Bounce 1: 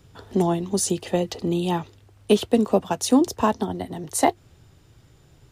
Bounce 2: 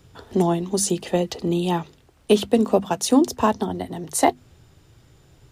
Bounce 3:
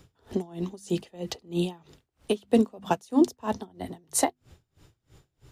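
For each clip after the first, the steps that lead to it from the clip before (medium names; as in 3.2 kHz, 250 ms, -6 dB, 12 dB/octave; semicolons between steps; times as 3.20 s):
hum notches 50/100/150/200/250 Hz; trim +1.5 dB
logarithmic tremolo 3.1 Hz, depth 29 dB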